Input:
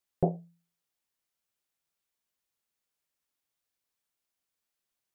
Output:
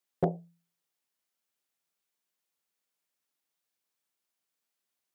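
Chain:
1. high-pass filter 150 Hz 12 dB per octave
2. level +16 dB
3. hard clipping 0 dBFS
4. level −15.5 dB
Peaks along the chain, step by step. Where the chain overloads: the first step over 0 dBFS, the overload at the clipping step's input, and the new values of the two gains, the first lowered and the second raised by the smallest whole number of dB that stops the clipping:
−12.0, +4.0, 0.0, −15.5 dBFS
step 2, 4.0 dB
step 2 +12 dB, step 4 −11.5 dB

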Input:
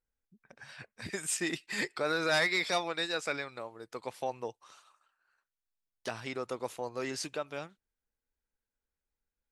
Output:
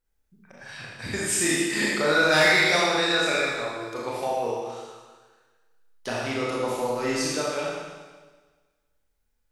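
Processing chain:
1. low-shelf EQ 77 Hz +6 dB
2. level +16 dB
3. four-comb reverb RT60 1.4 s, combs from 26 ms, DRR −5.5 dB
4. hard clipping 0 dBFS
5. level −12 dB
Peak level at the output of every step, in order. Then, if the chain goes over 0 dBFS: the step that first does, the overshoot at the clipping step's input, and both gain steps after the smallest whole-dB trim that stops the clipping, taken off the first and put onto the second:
−17.0, −1.0, +6.5, 0.0, −12.0 dBFS
step 3, 6.5 dB
step 2 +9 dB, step 5 −5 dB

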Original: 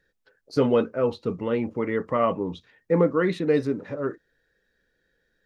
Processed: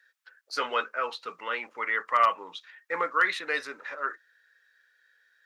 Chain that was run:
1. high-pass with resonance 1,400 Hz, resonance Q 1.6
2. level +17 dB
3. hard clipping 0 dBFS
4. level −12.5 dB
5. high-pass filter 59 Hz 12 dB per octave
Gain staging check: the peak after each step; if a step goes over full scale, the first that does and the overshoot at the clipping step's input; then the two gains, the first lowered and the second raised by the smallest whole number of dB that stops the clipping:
−13.5, +3.5, 0.0, −12.5, −12.0 dBFS
step 2, 3.5 dB
step 2 +13 dB, step 4 −8.5 dB

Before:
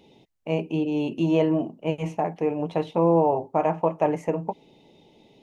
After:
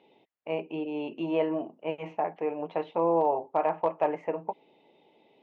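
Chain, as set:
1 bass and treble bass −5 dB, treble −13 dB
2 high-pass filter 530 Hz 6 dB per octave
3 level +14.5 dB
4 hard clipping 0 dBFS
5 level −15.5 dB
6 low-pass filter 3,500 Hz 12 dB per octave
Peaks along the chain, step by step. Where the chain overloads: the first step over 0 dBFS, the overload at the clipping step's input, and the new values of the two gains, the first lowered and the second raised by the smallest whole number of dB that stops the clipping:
−10.0, −11.5, +3.0, 0.0, −15.5, −15.5 dBFS
step 3, 3.0 dB
step 3 +11.5 dB, step 5 −12.5 dB

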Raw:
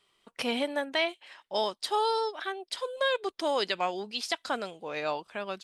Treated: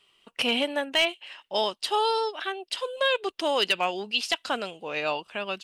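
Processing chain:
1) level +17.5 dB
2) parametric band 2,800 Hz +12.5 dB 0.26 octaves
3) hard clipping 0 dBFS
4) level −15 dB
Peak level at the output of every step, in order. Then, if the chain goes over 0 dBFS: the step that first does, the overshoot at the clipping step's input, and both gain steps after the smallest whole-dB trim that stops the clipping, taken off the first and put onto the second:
+3.0, +6.5, 0.0, −15.0 dBFS
step 1, 6.5 dB
step 1 +10.5 dB, step 4 −8 dB

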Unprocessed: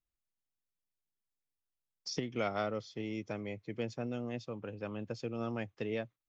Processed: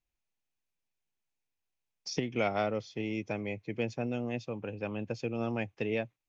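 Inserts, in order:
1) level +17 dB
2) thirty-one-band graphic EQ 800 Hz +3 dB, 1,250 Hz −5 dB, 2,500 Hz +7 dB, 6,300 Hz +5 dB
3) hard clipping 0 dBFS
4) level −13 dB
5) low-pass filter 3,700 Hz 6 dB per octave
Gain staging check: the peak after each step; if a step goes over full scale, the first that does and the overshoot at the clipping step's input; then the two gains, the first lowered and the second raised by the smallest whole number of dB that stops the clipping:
−5.0, −4.5, −4.5, −17.5, −17.5 dBFS
no step passes full scale

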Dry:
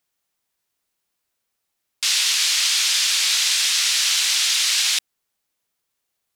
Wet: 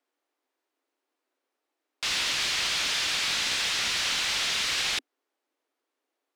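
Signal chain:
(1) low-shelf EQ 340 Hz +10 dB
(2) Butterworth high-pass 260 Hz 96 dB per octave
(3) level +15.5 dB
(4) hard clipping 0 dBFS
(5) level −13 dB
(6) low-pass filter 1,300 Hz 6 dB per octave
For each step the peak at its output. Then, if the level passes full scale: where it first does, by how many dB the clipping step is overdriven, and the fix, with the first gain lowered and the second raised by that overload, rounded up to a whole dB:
−6.0, −6.5, +9.0, 0.0, −13.0, −17.5 dBFS
step 3, 9.0 dB
step 3 +6.5 dB, step 5 −4 dB

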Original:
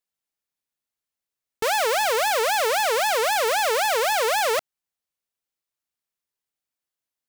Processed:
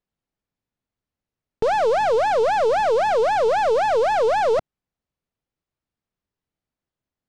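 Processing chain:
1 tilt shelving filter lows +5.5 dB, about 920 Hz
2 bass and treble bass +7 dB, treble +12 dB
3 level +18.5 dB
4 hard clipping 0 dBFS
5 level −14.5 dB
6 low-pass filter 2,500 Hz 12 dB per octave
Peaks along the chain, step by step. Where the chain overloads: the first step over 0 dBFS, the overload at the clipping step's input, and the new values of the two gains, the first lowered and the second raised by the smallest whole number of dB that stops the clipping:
−13.5, −10.5, +8.0, 0.0, −14.5, −14.0 dBFS
step 3, 8.0 dB
step 3 +10.5 dB, step 5 −6.5 dB

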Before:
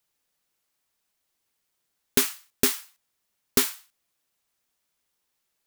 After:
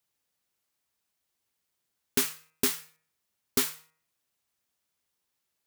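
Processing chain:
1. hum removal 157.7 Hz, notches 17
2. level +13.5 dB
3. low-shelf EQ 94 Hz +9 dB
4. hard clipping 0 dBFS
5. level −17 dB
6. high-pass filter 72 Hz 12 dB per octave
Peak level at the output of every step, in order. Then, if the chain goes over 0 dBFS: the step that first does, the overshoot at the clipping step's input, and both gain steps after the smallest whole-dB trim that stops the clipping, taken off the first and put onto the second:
−4.5, +9.0, +10.0, 0.0, −17.0, −13.5 dBFS
step 2, 10.0 dB
step 2 +3.5 dB, step 5 −7 dB

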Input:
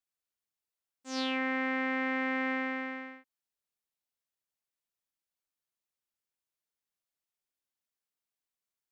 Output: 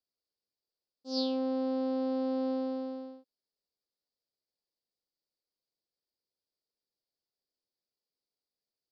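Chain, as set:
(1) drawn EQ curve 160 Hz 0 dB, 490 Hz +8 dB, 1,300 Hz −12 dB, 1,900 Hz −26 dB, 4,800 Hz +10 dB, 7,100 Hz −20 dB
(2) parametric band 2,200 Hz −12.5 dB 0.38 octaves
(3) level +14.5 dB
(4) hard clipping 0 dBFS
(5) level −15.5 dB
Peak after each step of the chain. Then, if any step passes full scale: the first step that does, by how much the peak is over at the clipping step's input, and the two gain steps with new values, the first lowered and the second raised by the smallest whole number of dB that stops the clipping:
−17.5, −18.0, −3.5, −3.5, −19.0 dBFS
no step passes full scale

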